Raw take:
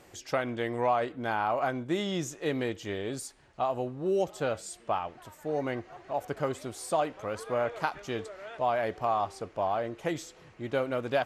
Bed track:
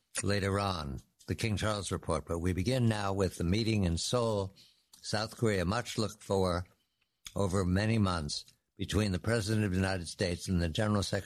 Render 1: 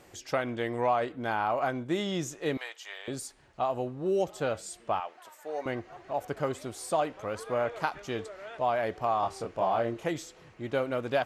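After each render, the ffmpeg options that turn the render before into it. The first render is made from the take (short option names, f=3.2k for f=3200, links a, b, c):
-filter_complex "[0:a]asettb=1/sr,asplit=3[a][b][c];[a]atrim=end=2.574[d];[b]atrim=start=2.57:end=3.08,asetpts=PTS-STARTPTS,afade=t=in:d=0.004:c=qsin,afade=t=out:st=0.506:d=0.004:c=qsin,highpass=f=780:w=0.5412,highpass=f=780:w=1.3066[e];[c]atrim=start=3.076[f];[d][e]acrossfade=d=0.004:c1=hsin:c2=qsin[g];[g][f]acrossfade=d=0.004:c1=qsin:c2=hsin,asettb=1/sr,asplit=3[h][i][j];[h]atrim=end=5.004[k];[i]atrim=start=5:end=5.66,asetpts=PTS-STARTPTS,afade=t=in:d=0.004:c=qsin,afade=t=out:st=0.656:d=0.004:c=qsin,highpass=560[l];[j]atrim=start=5.656[m];[k][l]acrossfade=d=0.004:c1=hsin:c2=qsin[n];[n][m]acrossfade=d=0.004:c1=qsin:c2=hsin,asettb=1/sr,asplit=3[o][p][q];[o]atrim=end=9.204[r];[p]atrim=start=9.2:end=10.04,asetpts=PTS-STARTPTS,afade=t=in:d=0.004:c=qsin,afade=t=out:st=0.836:d=0.004:c=qsin,asplit=2[s][t];[t]adelay=26,volume=-2dB[u];[s][u]amix=inputs=2:normalize=0,atrim=end_sample=37044[v];[q]atrim=start=10.036[w];[r][v]acrossfade=d=0.004:c1=hsin:c2=qsin[x];[x][w]acrossfade=d=0.004:c1=qsin:c2=hsin"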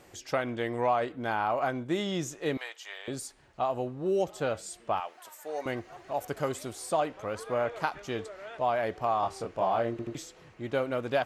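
-filter_complex "[0:a]asettb=1/sr,asplit=3[a][b][c];[a]atrim=end=4.974[d];[b]atrim=start=4.97:end=6.73,asetpts=PTS-STARTPTS,afade=t=in:d=0.004:c=qsin,afade=t=out:st=1.756:d=0.004:c=qsin,aemphasis=mode=production:type=cd[e];[c]atrim=start=6.726[f];[d][e]acrossfade=d=0.004:c1=hsin:c2=qsin[g];[g][f]acrossfade=d=0.004:c1=qsin:c2=hsin,asplit=4[h][i][j][k];[h]atrim=end=9.992[l];[i]atrim=start=9.908:end=9.992[m];[j]atrim=start=9.908:end=9.992[n];[k]atrim=start=10.148[o];[l][m]acrossfade=d=0.004:c1=hsin:c2=hsin[p];[p][n]acrossfade=d=0.004:c1=hsin:c2=hsin[q];[q][o]acrossfade=d=0.004:c1=hsin:c2=hsin"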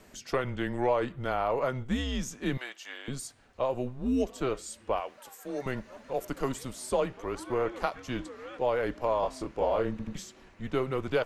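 -af "afreqshift=-130"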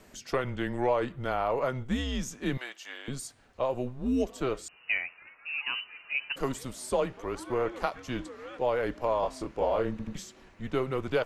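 -filter_complex "[0:a]asettb=1/sr,asplit=3[a][b][c];[a]atrim=end=4.684[d];[b]atrim=start=4.68:end=6.36,asetpts=PTS-STARTPTS,afade=t=in:d=0.004:c=qsin,afade=t=out:st=1.676:d=0.004:c=qsin,lowpass=f=2.6k:t=q:w=0.5098,lowpass=f=2.6k:t=q:w=0.6013,lowpass=f=2.6k:t=q:w=0.9,lowpass=f=2.6k:t=q:w=2.563,afreqshift=-3000[e];[c]atrim=start=6.356[f];[d][e]acrossfade=d=0.004:c1=hsin:c2=qsin[g];[g][f]acrossfade=d=0.004:c1=qsin:c2=hsin"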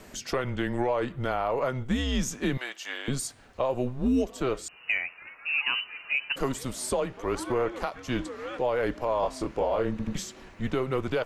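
-af "acontrast=78,alimiter=limit=-17dB:level=0:latency=1:release=410"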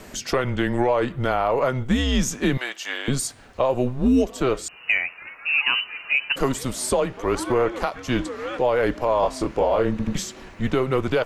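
-af "volume=6.5dB"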